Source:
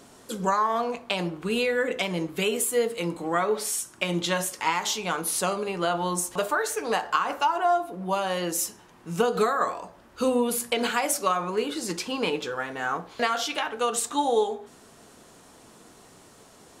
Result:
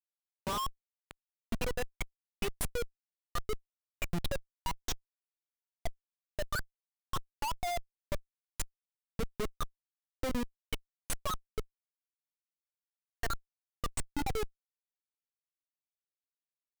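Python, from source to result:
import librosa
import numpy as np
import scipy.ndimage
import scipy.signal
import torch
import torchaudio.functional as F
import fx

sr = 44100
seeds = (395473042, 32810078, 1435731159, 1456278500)

y = fx.bin_expand(x, sr, power=3.0)
y = fx.level_steps(y, sr, step_db=16)
y = fx.schmitt(y, sr, flips_db=-36.5)
y = fx.low_shelf(y, sr, hz=160.0, db=7.0)
y = y * 10.0 ** (7.0 / 20.0)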